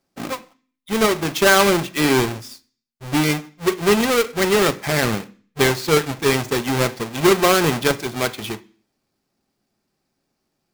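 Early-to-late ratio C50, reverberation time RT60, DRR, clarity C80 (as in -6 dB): 20.0 dB, 0.40 s, 8.5 dB, 25.0 dB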